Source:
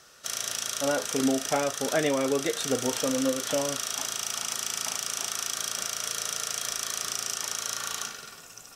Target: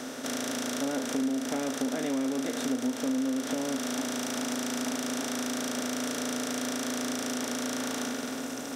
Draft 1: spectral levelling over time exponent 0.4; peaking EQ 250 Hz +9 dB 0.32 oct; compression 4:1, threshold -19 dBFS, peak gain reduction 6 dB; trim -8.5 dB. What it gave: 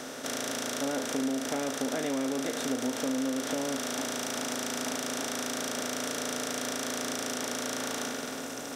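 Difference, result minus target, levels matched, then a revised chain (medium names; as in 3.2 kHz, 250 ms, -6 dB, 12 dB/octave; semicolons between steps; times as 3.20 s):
250 Hz band -2.5 dB
spectral levelling over time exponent 0.4; peaking EQ 250 Hz +16 dB 0.32 oct; compression 4:1, threshold -19 dBFS, peak gain reduction 9.5 dB; trim -8.5 dB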